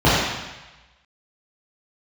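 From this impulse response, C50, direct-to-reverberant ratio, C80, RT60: -2.0 dB, -11.0 dB, 0.5 dB, 1.1 s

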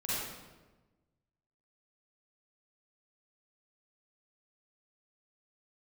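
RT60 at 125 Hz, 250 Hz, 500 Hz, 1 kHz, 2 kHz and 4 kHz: 1.7 s, 1.5 s, 1.3 s, 1.1 s, 1.0 s, 0.85 s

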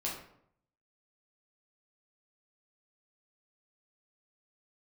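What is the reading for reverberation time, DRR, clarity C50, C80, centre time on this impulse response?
0.70 s, -5.0 dB, 4.0 dB, 8.0 dB, 40 ms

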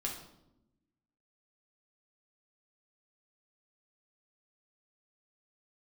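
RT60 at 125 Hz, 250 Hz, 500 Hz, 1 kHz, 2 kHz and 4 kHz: 1.3 s, 1.5 s, 1.0 s, 0.75 s, 0.60 s, 0.60 s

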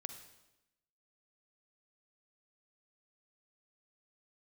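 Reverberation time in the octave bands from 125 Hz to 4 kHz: 1.0 s, 1.1 s, 1.0 s, 0.90 s, 0.90 s, 0.90 s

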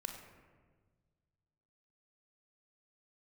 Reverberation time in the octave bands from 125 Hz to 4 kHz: 2.5 s, 1.9 s, 1.7 s, 1.3 s, 1.2 s, 0.80 s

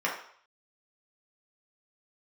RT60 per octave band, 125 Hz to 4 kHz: 0.35 s, 0.45 s, 0.55 s, 0.65 s, 0.55 s, 0.60 s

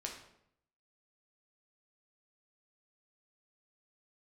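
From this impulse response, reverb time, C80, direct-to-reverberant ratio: 0.75 s, 9.0 dB, 0.0 dB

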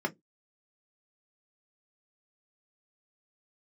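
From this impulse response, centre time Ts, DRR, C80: 6 ms, 0.5 dB, 38.0 dB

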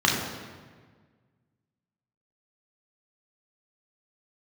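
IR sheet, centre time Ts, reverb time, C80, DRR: 63 ms, 1.6 s, 4.5 dB, -3.0 dB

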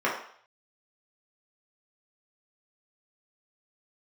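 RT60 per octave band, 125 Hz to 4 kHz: 0.55 s, 0.40 s, 0.55 s, 0.60 s, 0.55 s, 0.60 s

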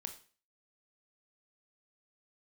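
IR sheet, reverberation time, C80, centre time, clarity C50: 0.40 s, 15.5 dB, 11 ms, 11.0 dB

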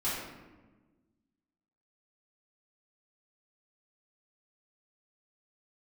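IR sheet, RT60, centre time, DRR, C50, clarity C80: 1.3 s, 75 ms, -11.0 dB, 0.0 dB, 3.0 dB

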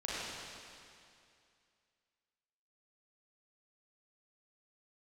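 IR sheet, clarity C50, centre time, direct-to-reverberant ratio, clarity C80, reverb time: -5.0 dB, 177 ms, -8.5 dB, -3.0 dB, 2.4 s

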